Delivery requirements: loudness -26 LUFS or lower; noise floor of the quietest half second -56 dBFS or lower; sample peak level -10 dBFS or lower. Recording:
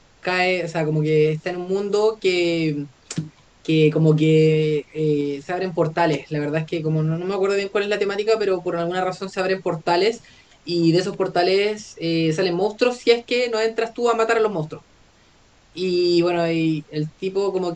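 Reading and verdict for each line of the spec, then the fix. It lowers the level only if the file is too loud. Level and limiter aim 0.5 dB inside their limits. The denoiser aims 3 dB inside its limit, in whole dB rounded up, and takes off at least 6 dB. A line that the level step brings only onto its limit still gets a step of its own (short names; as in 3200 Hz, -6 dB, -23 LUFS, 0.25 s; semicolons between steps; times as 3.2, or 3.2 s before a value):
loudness -21.0 LUFS: fail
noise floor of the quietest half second -54 dBFS: fail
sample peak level -3.5 dBFS: fail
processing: gain -5.5 dB; limiter -10.5 dBFS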